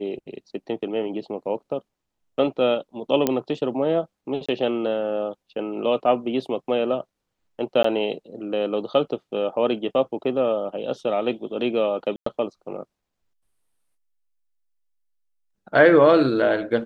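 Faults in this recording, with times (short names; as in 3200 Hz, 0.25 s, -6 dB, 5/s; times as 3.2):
3.27 pop -6 dBFS
4.46–4.49 gap 25 ms
7.83–7.84 gap 14 ms
12.16–12.26 gap 0.104 s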